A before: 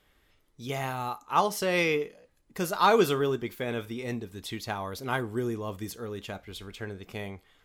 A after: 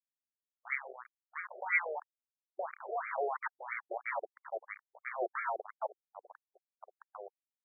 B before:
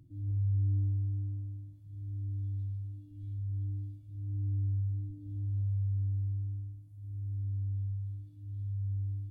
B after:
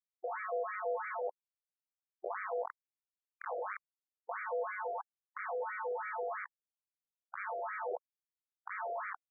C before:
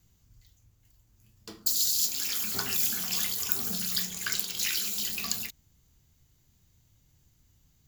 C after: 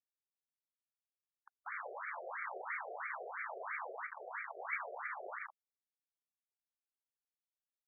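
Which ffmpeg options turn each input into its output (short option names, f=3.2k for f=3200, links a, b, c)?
-af "asuperstop=centerf=860:order=20:qfactor=0.5,aeval=exprs='val(0)*gte(abs(val(0)),0.0251)':c=same,afftfilt=real='re*between(b*sr/1024,520*pow(1700/520,0.5+0.5*sin(2*PI*3*pts/sr))/1.41,520*pow(1700/520,0.5+0.5*sin(2*PI*3*pts/sr))*1.41)':imag='im*between(b*sr/1024,520*pow(1700/520,0.5+0.5*sin(2*PI*3*pts/sr))/1.41,520*pow(1700/520,0.5+0.5*sin(2*PI*3*pts/sr))*1.41)':win_size=1024:overlap=0.75,volume=11.5dB"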